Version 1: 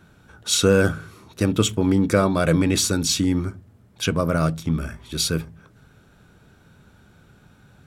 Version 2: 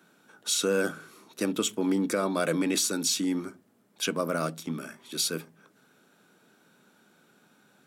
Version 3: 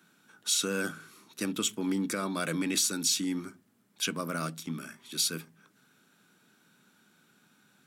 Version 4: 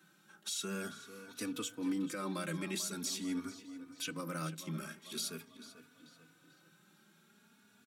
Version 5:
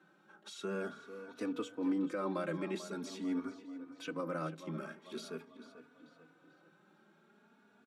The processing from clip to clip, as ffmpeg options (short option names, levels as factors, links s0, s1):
-af "highpass=f=210:w=0.5412,highpass=f=210:w=1.3066,highshelf=f=6100:g=6.5,alimiter=limit=0.316:level=0:latency=1:release=180,volume=0.531"
-af "equalizer=f=550:w=0.82:g=-9.5"
-filter_complex "[0:a]alimiter=level_in=1.26:limit=0.0631:level=0:latency=1:release=385,volume=0.794,asplit=2[s0][s1];[s1]adelay=441,lowpass=f=4500:p=1,volume=0.224,asplit=2[s2][s3];[s3]adelay=441,lowpass=f=4500:p=1,volume=0.51,asplit=2[s4][s5];[s5]adelay=441,lowpass=f=4500:p=1,volume=0.51,asplit=2[s6][s7];[s7]adelay=441,lowpass=f=4500:p=1,volume=0.51,asplit=2[s8][s9];[s9]adelay=441,lowpass=f=4500:p=1,volume=0.51[s10];[s0][s2][s4][s6][s8][s10]amix=inputs=6:normalize=0,asplit=2[s11][s12];[s12]adelay=3.4,afreqshift=0.45[s13];[s11][s13]amix=inputs=2:normalize=1,volume=1.12"
-af "bandpass=f=570:t=q:w=0.86:csg=0,volume=2.11"